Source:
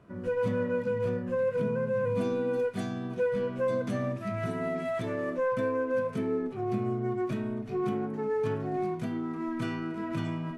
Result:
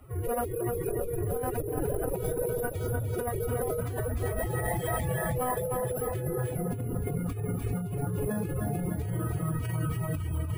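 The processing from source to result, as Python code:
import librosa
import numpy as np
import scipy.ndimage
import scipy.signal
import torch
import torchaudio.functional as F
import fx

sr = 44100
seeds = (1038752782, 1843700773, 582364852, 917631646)

y = fx.octave_divider(x, sr, octaves=2, level_db=4.0)
y = fx.lowpass(y, sr, hz=3100.0, slope=6)
y = fx.low_shelf(y, sr, hz=73.0, db=7.0)
y = y + 10.0 ** (-21.5 / 20.0) * np.pad(y, (int(234 * sr / 1000.0), 0))[:len(y)]
y = fx.pitch_keep_formants(y, sr, semitones=11.5)
y = np.repeat(y[::4], 4)[:len(y)]
y = fx.echo_feedback(y, sr, ms=298, feedback_pct=59, wet_db=-6)
y = fx.dereverb_blind(y, sr, rt60_s=0.68)
y = fx.over_compress(y, sr, threshold_db=-28.0, ratio=-1.0)
y = fx.high_shelf(y, sr, hz=2100.0, db=8.5)
y = y * 10.0 ** (-2.5 / 20.0)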